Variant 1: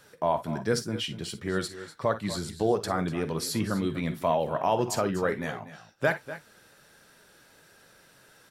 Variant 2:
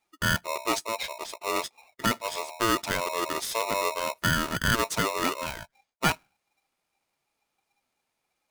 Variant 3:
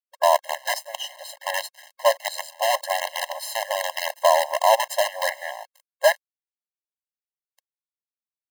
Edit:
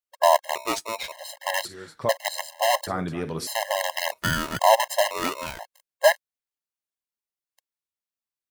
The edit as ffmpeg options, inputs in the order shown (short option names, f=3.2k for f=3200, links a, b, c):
-filter_complex "[1:a]asplit=3[a][b][c];[0:a]asplit=2[d][e];[2:a]asplit=6[f][g][h][i][j][k];[f]atrim=end=0.552[l];[a]atrim=start=0.548:end=1.122[m];[g]atrim=start=1.118:end=1.652[n];[d]atrim=start=1.648:end=2.092[o];[h]atrim=start=2.088:end=2.872[p];[e]atrim=start=2.868:end=3.472[q];[i]atrim=start=3.468:end=4.122[r];[b]atrim=start=4.118:end=4.592[s];[j]atrim=start=4.588:end=5.112[t];[c]atrim=start=5.108:end=5.592[u];[k]atrim=start=5.588[v];[l][m]acrossfade=d=0.004:c1=hsin:c2=hsin[w];[w][n]acrossfade=d=0.004:c1=hsin:c2=hsin[x];[x][o]acrossfade=d=0.004:c1=hsin:c2=hsin[y];[y][p]acrossfade=d=0.004:c1=hsin:c2=hsin[z];[z][q]acrossfade=d=0.004:c1=hsin:c2=hsin[aa];[aa][r]acrossfade=d=0.004:c1=hsin:c2=hsin[ab];[ab][s]acrossfade=d=0.004:c1=hsin:c2=hsin[ac];[ac][t]acrossfade=d=0.004:c1=hsin:c2=hsin[ad];[ad][u]acrossfade=d=0.004:c1=hsin:c2=hsin[ae];[ae][v]acrossfade=d=0.004:c1=hsin:c2=hsin"